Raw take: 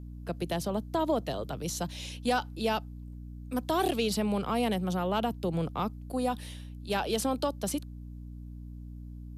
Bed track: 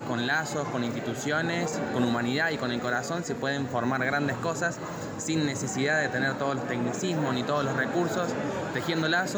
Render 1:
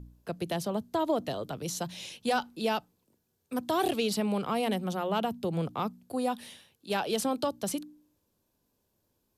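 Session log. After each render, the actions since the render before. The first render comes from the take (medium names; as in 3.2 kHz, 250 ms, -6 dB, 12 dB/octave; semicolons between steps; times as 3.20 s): de-hum 60 Hz, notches 5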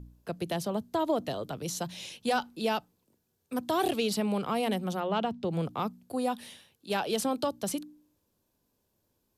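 5.00–5.51 s: low-pass 5.1 kHz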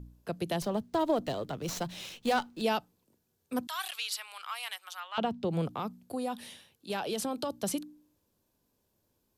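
0.62–2.62 s: sliding maximum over 3 samples; 3.67–5.18 s: high-pass 1.2 kHz 24 dB/octave; 5.72–7.50 s: compression 2.5:1, threshold -31 dBFS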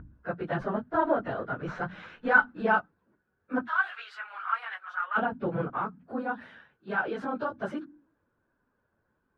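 phase randomisation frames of 50 ms; resonant low-pass 1.5 kHz, resonance Q 5.9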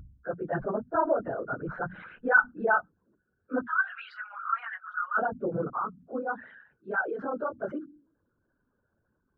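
resonances exaggerated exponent 2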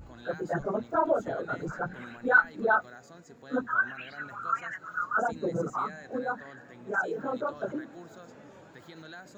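add bed track -20.5 dB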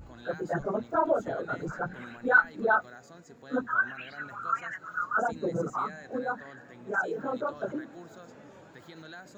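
no audible change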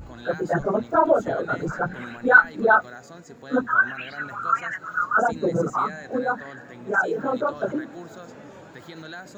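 trim +7.5 dB; peak limiter -2 dBFS, peak gain reduction 1 dB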